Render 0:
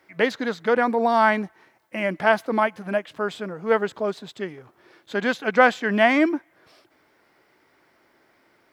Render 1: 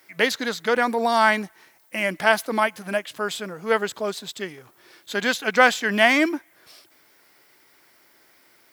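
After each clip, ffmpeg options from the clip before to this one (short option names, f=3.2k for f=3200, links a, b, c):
-af "crystalizer=i=5.5:c=0,volume=-2.5dB"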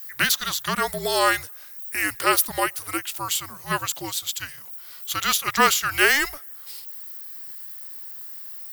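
-af "afreqshift=-290,aemphasis=mode=production:type=riaa,volume=-1.5dB"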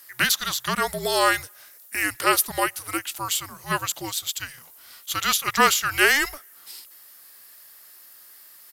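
-af "aresample=32000,aresample=44100"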